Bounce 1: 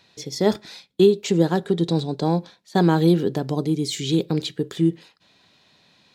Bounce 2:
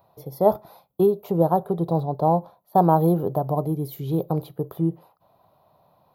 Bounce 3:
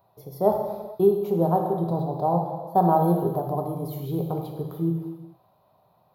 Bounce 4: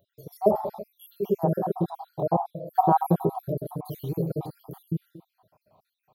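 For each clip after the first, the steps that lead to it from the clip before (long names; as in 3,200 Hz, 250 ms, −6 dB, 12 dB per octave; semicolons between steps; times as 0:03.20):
drawn EQ curve 140 Hz 0 dB, 240 Hz −10 dB, 440 Hz −4 dB, 640 Hz +8 dB, 1,200 Hz +1 dB, 1,700 Hz −21 dB, 4,600 Hz −23 dB, 7,900 Hz −29 dB, 12,000 Hz +9 dB; level +1.5 dB
reverb whose tail is shaped and stops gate 480 ms falling, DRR 1.5 dB; level −4.5 dB
time-frequency cells dropped at random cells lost 61%; level +1.5 dB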